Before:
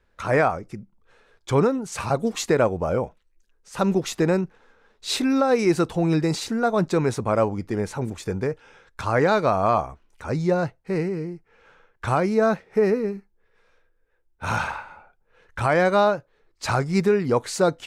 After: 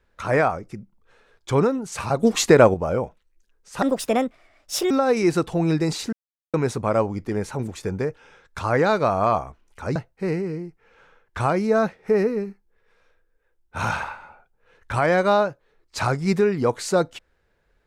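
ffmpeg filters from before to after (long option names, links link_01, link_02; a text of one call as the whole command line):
ffmpeg -i in.wav -filter_complex "[0:a]asplit=8[link_01][link_02][link_03][link_04][link_05][link_06][link_07][link_08];[link_01]atrim=end=2.232[link_09];[link_02]atrim=start=2.228:end=2.742,asetpts=PTS-STARTPTS,volume=6.5dB[link_10];[link_03]atrim=start=2.738:end=3.824[link_11];[link_04]atrim=start=3.82:end=5.33,asetpts=PTS-STARTPTS,asetrate=61299,aresample=44100,atrim=end_sample=47907,asetpts=PTS-STARTPTS[link_12];[link_05]atrim=start=5.326:end=6.55,asetpts=PTS-STARTPTS,afade=type=out:start_time=1.22:duration=0.004:curve=hsin[link_13];[link_06]atrim=start=6.55:end=6.96,asetpts=PTS-STARTPTS,volume=0[link_14];[link_07]atrim=start=6.96:end=10.382,asetpts=PTS-STARTPTS,afade=type=in:duration=0.004:curve=hsin[link_15];[link_08]atrim=start=10.628[link_16];[link_09][link_10]acrossfade=duration=0.004:curve1=hsin:curve2=hsin[link_17];[link_17][link_11]acrossfade=duration=0.004:curve1=hsin:curve2=hsin[link_18];[link_18][link_12]acrossfade=duration=0.004:curve1=hsin:curve2=hsin[link_19];[link_13][link_14][link_15]concat=n=3:v=0:a=1[link_20];[link_19][link_20]acrossfade=duration=0.004:curve1=hsin:curve2=hsin[link_21];[link_21][link_16]acrossfade=duration=0.004:curve1=hsin:curve2=hsin" out.wav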